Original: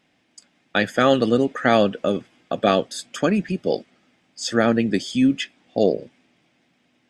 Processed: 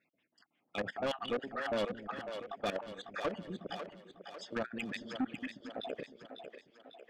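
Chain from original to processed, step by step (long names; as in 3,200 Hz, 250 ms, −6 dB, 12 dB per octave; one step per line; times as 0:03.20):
time-frequency cells dropped at random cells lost 34%
high-pass filter 43 Hz
low-shelf EQ 150 Hz −7 dB
output level in coarse steps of 20 dB
brickwall limiter −16.5 dBFS, peak gain reduction 9 dB
auto-filter low-pass sine 5.7 Hz 600–3,500 Hz
soft clipping −27.5 dBFS, distortion −6 dB
echo with a time of its own for lows and highs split 350 Hz, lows 223 ms, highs 548 ms, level −8 dB
level −1.5 dB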